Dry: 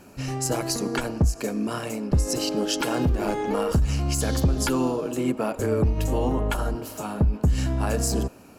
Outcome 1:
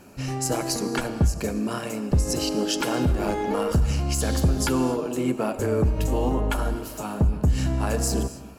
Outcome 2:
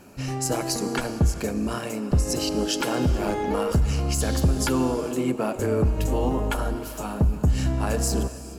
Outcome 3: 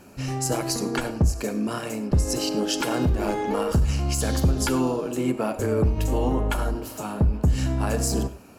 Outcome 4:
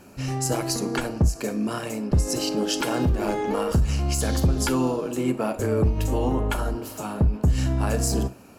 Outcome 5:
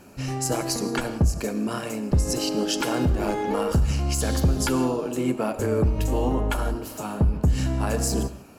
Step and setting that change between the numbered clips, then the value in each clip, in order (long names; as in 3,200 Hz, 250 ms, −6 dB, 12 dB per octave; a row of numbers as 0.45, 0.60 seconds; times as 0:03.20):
reverb whose tail is shaped and stops, gate: 300, 480, 130, 80, 200 milliseconds